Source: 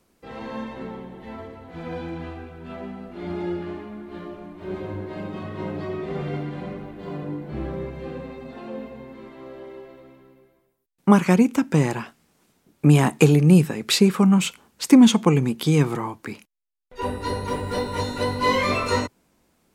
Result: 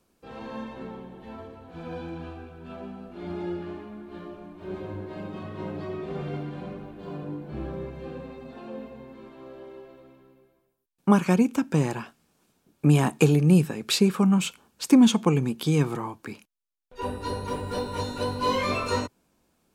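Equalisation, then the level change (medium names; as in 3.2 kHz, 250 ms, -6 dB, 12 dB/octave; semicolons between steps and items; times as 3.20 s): band-stop 2 kHz, Q 9; -4.0 dB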